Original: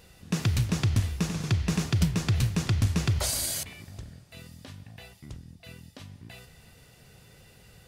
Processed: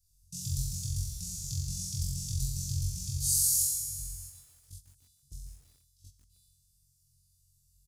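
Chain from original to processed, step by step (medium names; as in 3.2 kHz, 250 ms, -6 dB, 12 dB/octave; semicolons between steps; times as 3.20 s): compression 10:1, threshold -25 dBFS, peak gain reduction 8 dB; flutter echo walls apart 3.8 m, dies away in 1.1 s; resampled via 32 kHz; inverse Chebyshev band-stop 410–1400 Hz, stop band 80 dB; comb 6 ms, depth 45%; feedback echo behind a high-pass 328 ms, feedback 67%, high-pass 4.3 kHz, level -19 dB; gate -44 dBFS, range -15 dB; bit-crushed delay 147 ms, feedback 55%, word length 9-bit, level -12.5 dB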